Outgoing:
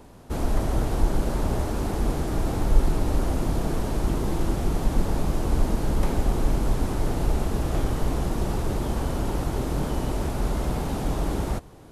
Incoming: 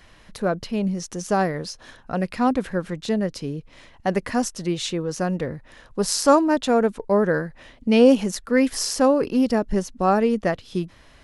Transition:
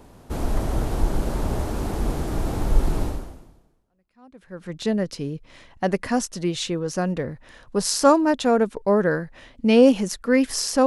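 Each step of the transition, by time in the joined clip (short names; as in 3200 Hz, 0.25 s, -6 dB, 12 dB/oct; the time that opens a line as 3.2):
outgoing
3.9 switch to incoming from 2.13 s, crossfade 1.72 s exponential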